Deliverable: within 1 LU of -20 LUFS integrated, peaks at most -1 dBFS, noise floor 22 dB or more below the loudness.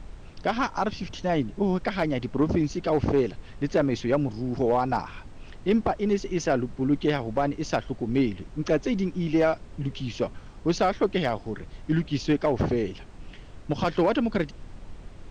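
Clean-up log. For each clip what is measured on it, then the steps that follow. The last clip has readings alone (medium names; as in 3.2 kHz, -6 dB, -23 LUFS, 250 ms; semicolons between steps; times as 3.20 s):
clipped samples 0.3%; clipping level -14.5 dBFS; noise floor -45 dBFS; noise floor target -49 dBFS; loudness -26.5 LUFS; peak level -14.5 dBFS; loudness target -20.0 LUFS
-> clip repair -14.5 dBFS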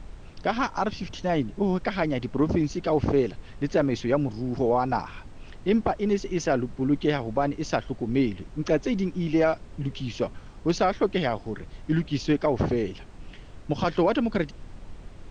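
clipped samples 0.0%; noise floor -45 dBFS; noise floor target -49 dBFS
-> noise print and reduce 6 dB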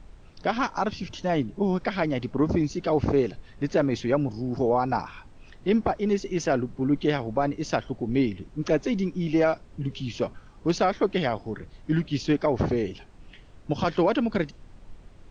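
noise floor -50 dBFS; loudness -26.5 LUFS; peak level -11.0 dBFS; loudness target -20.0 LUFS
-> trim +6.5 dB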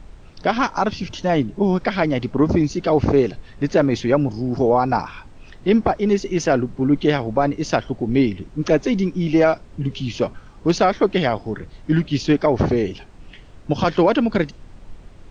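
loudness -20.0 LUFS; peak level -4.5 dBFS; noise floor -43 dBFS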